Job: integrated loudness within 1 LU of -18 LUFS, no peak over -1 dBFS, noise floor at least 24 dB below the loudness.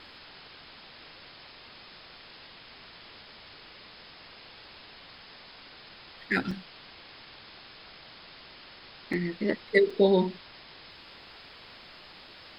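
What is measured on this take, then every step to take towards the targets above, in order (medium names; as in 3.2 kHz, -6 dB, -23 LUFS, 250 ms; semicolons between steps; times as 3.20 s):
dropouts 3; longest dropout 4.2 ms; noise floor -50 dBFS; noise floor target -51 dBFS; loudness -27.0 LUFS; peak level -7.5 dBFS; loudness target -18.0 LUFS
-> interpolate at 6.51/9.13/9.90 s, 4.2 ms; noise print and reduce 6 dB; trim +9 dB; peak limiter -1 dBFS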